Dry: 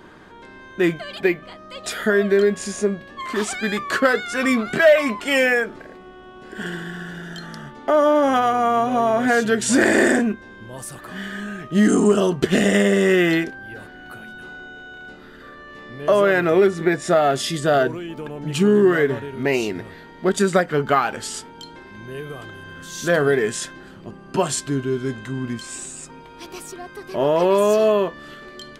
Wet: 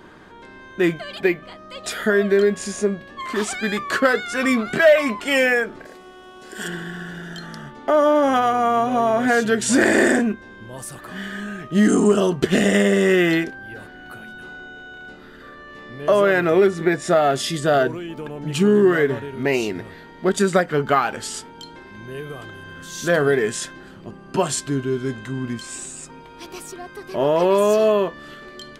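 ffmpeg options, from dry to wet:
ffmpeg -i in.wav -filter_complex "[0:a]asettb=1/sr,asplit=3[link_01][link_02][link_03];[link_01]atrim=end=5.854[link_04];[link_02]atrim=start=5.85:end=6.68,asetpts=PTS-STARTPTS,afade=type=in:duration=0.004:curve=qsin,afade=type=out:start_time=0.826:duration=0.004:curve=qsin,bass=frequency=250:gain=-7,treble=frequency=4000:gain=13[link_05];[link_03]atrim=start=6.676[link_06];[link_04][link_05]acrossfade=duration=0.004:curve1=hsin:curve2=qsin[link_07];[link_07][link_06]acrossfade=duration=0.004:curve1=qsin:curve2=hsin" out.wav

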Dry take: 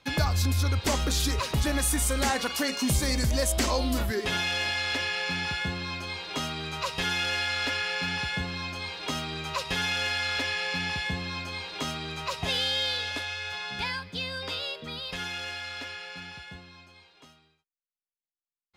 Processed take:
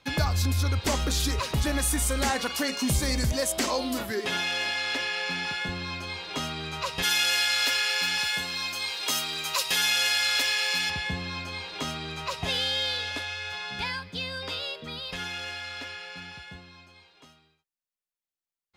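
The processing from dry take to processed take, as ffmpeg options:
ffmpeg -i in.wav -filter_complex "[0:a]asettb=1/sr,asplit=3[link_01][link_02][link_03];[link_01]atrim=end=3.324[link_04];[link_02]atrim=start=3.32:end=5.69,asetpts=PTS-STARTPTS,afade=type=in:duration=0.004:curve=qsin,afade=type=out:start_time=2.366:duration=0.004:curve=qsin,highpass=180[link_05];[link_03]atrim=start=5.686[link_06];[link_04][link_05]acrossfade=duration=0.004:curve1=hsin:curve2=qsin[link_07];[link_07][link_06]acrossfade=duration=0.004:curve1=qsin:curve2=hsin,asplit=3[link_08][link_09][link_10];[link_08]afade=type=out:start_time=7.02:duration=0.02[link_11];[link_09]aemphasis=mode=production:type=riaa,afade=type=in:start_time=7.02:duration=0.02,afade=type=out:start_time=10.89:duration=0.02[link_12];[link_10]afade=type=in:start_time=10.89:duration=0.02[link_13];[link_11][link_12][link_13]amix=inputs=3:normalize=0" out.wav

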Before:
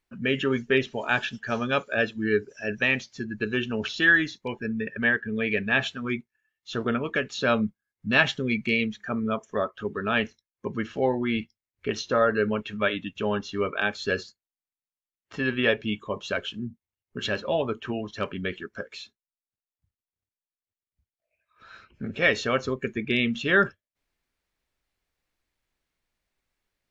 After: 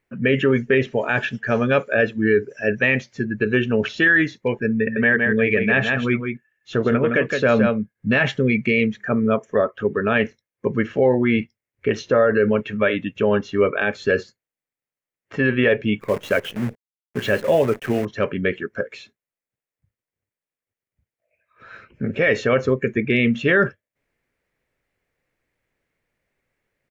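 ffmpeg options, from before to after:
ffmpeg -i in.wav -filter_complex "[0:a]asplit=3[link_01][link_02][link_03];[link_01]afade=type=out:start_time=4.85:duration=0.02[link_04];[link_02]aecho=1:1:164:0.473,afade=type=in:start_time=4.85:duration=0.02,afade=type=out:start_time=8.1:duration=0.02[link_05];[link_03]afade=type=in:start_time=8.1:duration=0.02[link_06];[link_04][link_05][link_06]amix=inputs=3:normalize=0,asettb=1/sr,asplit=3[link_07][link_08][link_09];[link_07]atrim=end=16.004[link_10];[link_08]atrim=start=16:end=18.05,asetpts=PTS-STARTPTS,afade=type=in:duration=0.004:curve=qsin,afade=type=out:start_time=2.046:duration=0.004:curve=qsin,acrusher=bits=7:dc=4:mix=0:aa=0.000001[link_11];[link_09]atrim=start=18.046[link_12];[link_10][link_11]acrossfade=duration=0.004:curve1=hsin:curve2=qsin[link_13];[link_13][link_12]acrossfade=duration=0.004:curve1=qsin:curve2=hsin,equalizer=frequency=125:width_type=o:width=1:gain=10,equalizer=frequency=250:width_type=o:width=1:gain=4,equalizer=frequency=500:width_type=o:width=1:gain=11,equalizer=frequency=2000:width_type=o:width=1:gain=10,equalizer=frequency=4000:width_type=o:width=1:gain=-5,alimiter=limit=-8dB:level=0:latency=1:release=25" out.wav

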